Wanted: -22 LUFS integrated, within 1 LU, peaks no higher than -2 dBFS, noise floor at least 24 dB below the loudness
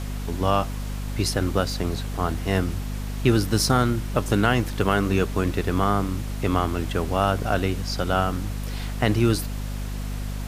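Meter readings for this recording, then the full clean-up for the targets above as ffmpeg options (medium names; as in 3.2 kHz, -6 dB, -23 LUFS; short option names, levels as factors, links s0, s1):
hum 50 Hz; highest harmonic 250 Hz; hum level -27 dBFS; noise floor -30 dBFS; noise floor target -49 dBFS; loudness -24.5 LUFS; peak level -5.0 dBFS; loudness target -22.0 LUFS
-> -af "bandreject=f=50:t=h:w=6,bandreject=f=100:t=h:w=6,bandreject=f=150:t=h:w=6,bandreject=f=200:t=h:w=6,bandreject=f=250:t=h:w=6"
-af "afftdn=nr=19:nf=-30"
-af "volume=1.33"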